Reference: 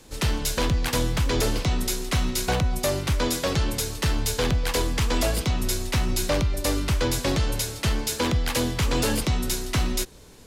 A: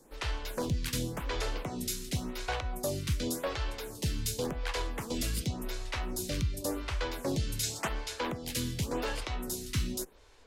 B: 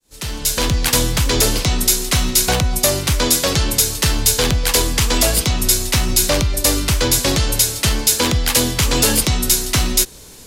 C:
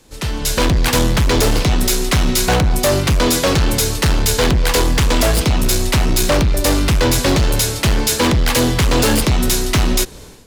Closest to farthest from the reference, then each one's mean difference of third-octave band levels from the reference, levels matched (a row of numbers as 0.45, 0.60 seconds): C, B, A; 2.0, 3.5, 5.0 decibels